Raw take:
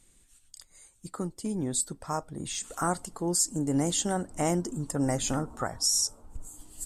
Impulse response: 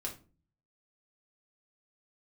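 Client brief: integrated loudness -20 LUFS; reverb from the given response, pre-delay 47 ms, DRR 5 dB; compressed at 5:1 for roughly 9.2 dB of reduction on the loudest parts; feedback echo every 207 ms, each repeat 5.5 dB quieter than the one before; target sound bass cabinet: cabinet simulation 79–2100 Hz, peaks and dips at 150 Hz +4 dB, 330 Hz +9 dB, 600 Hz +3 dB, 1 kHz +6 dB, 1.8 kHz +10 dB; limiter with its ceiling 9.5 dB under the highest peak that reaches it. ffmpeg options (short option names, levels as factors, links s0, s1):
-filter_complex "[0:a]acompressor=threshold=0.0224:ratio=5,alimiter=level_in=2:limit=0.0631:level=0:latency=1,volume=0.501,aecho=1:1:207|414|621|828|1035|1242|1449:0.531|0.281|0.149|0.079|0.0419|0.0222|0.0118,asplit=2[s0][s1];[1:a]atrim=start_sample=2205,adelay=47[s2];[s1][s2]afir=irnorm=-1:irlink=0,volume=0.562[s3];[s0][s3]amix=inputs=2:normalize=0,highpass=f=79:w=0.5412,highpass=f=79:w=1.3066,equalizer=f=150:t=q:w=4:g=4,equalizer=f=330:t=q:w=4:g=9,equalizer=f=600:t=q:w=4:g=3,equalizer=f=1000:t=q:w=4:g=6,equalizer=f=1800:t=q:w=4:g=10,lowpass=f=2100:w=0.5412,lowpass=f=2100:w=1.3066,volume=5.01"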